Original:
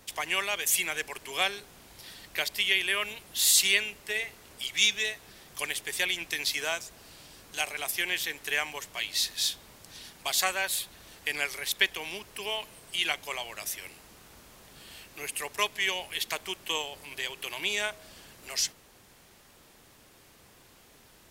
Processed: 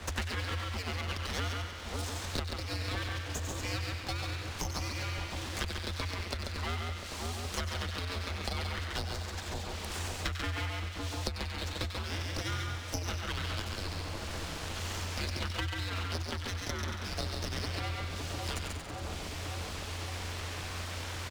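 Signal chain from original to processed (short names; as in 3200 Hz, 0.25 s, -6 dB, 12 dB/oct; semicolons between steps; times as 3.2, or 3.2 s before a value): treble ducked by the level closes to 980 Hz, closed at -28 dBFS; LPF 4300 Hz; bell 380 Hz -14.5 dB 0.45 oct; echo 0.137 s -4.5 dB; full-wave rectifier; frequency shift -88 Hz; on a send: split-band echo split 1100 Hz, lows 0.56 s, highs 93 ms, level -8 dB; on the sum: three-band squash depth 100%; gain +4 dB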